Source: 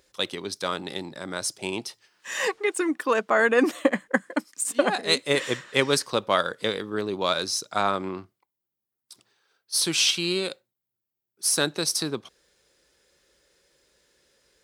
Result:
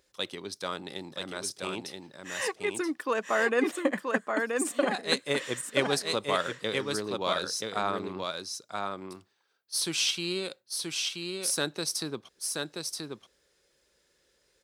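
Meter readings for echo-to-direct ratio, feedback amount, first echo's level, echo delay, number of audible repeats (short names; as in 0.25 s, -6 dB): -4.0 dB, no steady repeat, -4.0 dB, 0.979 s, 1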